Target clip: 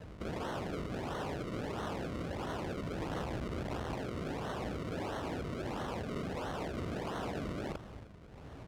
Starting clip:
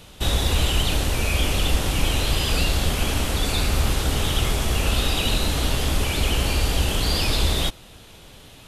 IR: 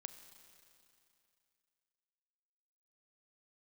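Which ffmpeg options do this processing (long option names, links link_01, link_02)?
-filter_complex "[0:a]acrossover=split=550|1400[link_01][link_02][link_03];[link_03]alimiter=level_in=0.5dB:limit=-24dB:level=0:latency=1:release=17,volume=-0.5dB[link_04];[link_01][link_02][link_04]amix=inputs=3:normalize=0,tremolo=f=1.4:d=0.51,acompressor=threshold=-25dB:ratio=10,asettb=1/sr,asplit=3[link_05][link_06][link_07];[link_05]atrim=end=2.984[link_08];[link_06]atrim=start=2.98:end=3.95,asetpts=PTS-STARTPTS,afade=type=in:duration=0.004:curve=qsin,afade=type=out:start_time=0.966:duration=0.004:curve=qsin,volume=32dB,asoftclip=hard,volume=-32dB[link_09];[link_07]atrim=start=3.946[link_10];[link_08][link_09]acrossfade=duration=0.004:curve1=hsin:curve2=qsin[link_11];[link_11][link_10]acrossfade=duration=0.004:curve1=qsin:curve2=hsin,equalizer=frequency=4000:width_type=o:width=2.3:gain=-13,aecho=1:1:36|65:0.141|0.316,acrusher=samples=36:mix=1:aa=0.000001:lfo=1:lforange=36:lforate=1.5,aeval=exprs='(mod(47.3*val(0)+1,2)-1)/47.3':channel_layout=same,highpass=45,aemphasis=mode=reproduction:type=50fm"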